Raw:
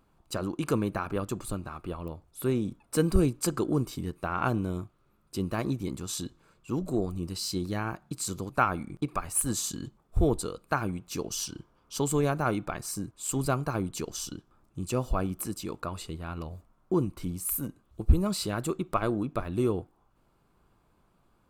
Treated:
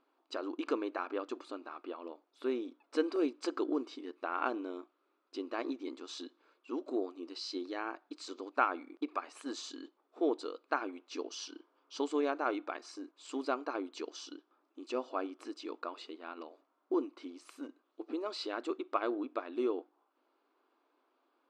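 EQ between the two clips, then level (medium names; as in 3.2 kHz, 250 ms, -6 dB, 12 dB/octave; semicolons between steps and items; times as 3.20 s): brick-wall FIR high-pass 250 Hz; low-pass 4.9 kHz 24 dB/octave; -4.5 dB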